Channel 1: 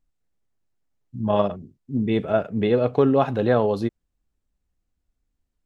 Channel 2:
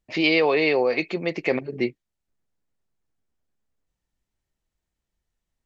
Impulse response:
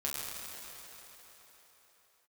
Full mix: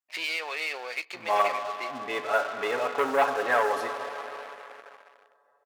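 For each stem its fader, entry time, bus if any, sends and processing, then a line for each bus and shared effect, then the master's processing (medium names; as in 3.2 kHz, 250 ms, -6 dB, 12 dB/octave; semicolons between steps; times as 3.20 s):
-3.5 dB, 0.00 s, send -7.5 dB, peaking EQ 4 kHz -14 dB 0.98 oct; comb 7 ms, depth 66%
-9.0 dB, 0.00 s, send -20.5 dB, peak limiter -17 dBFS, peak gain reduction 9.5 dB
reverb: on, RT60 4.3 s, pre-delay 7 ms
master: waveshaping leveller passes 2; high-pass 1.1 kHz 12 dB/octave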